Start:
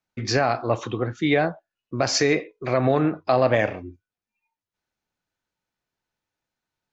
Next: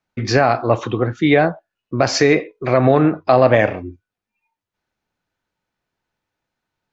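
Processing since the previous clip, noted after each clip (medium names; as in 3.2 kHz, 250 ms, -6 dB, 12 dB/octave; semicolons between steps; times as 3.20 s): treble shelf 5.3 kHz -10.5 dB; trim +7 dB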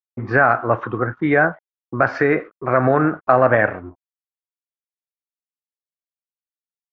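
crossover distortion -44 dBFS; touch-sensitive low-pass 690–1500 Hz up, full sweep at -16 dBFS; trim -4 dB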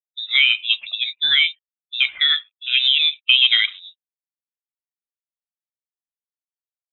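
expander on every frequency bin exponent 1.5; frequency inversion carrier 3.8 kHz; trim +1 dB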